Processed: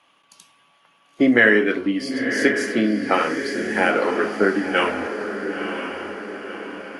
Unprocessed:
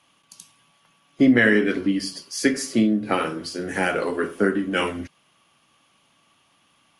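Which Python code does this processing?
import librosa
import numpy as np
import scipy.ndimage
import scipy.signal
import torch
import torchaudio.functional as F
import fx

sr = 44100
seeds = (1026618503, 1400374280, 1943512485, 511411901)

p1 = fx.bass_treble(x, sr, bass_db=-12, treble_db=-11)
p2 = p1 + fx.echo_diffused(p1, sr, ms=1004, feedback_pct=52, wet_db=-7.0, dry=0)
y = F.gain(torch.from_numpy(p2), 4.5).numpy()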